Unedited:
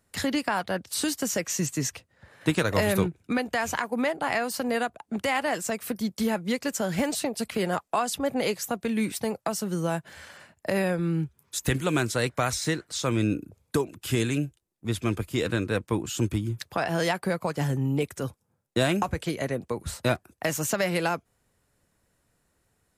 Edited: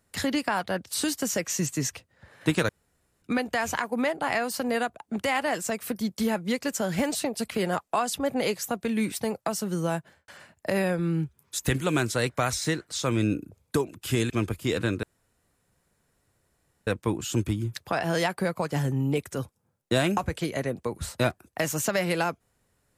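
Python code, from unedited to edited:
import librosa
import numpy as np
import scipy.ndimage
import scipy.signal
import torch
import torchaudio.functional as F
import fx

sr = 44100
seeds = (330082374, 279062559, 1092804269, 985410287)

y = fx.studio_fade_out(x, sr, start_s=9.93, length_s=0.35)
y = fx.edit(y, sr, fx.room_tone_fill(start_s=2.69, length_s=0.53),
    fx.cut(start_s=14.3, length_s=0.69),
    fx.insert_room_tone(at_s=15.72, length_s=1.84), tone=tone)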